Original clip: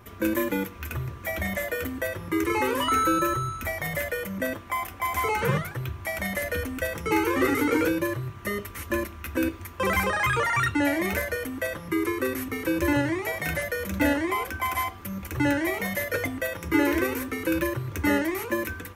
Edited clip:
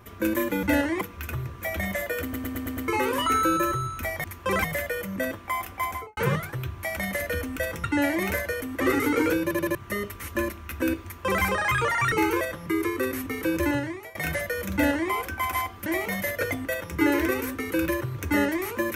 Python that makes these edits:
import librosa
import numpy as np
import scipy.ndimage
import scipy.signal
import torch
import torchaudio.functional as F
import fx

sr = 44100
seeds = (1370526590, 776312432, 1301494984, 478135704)

y = fx.studio_fade_out(x, sr, start_s=5.02, length_s=0.37)
y = fx.edit(y, sr, fx.stutter_over(start_s=1.84, slice_s=0.11, count=6),
    fx.swap(start_s=7.06, length_s=0.29, other_s=10.67, other_length_s=0.96),
    fx.stutter_over(start_s=7.98, slice_s=0.08, count=4),
    fx.duplicate(start_s=9.58, length_s=0.4, to_s=3.86),
    fx.fade_out_to(start_s=12.8, length_s=0.57, floor_db=-19.5),
    fx.duplicate(start_s=13.95, length_s=0.38, to_s=0.63),
    fx.cut(start_s=15.08, length_s=0.51), tone=tone)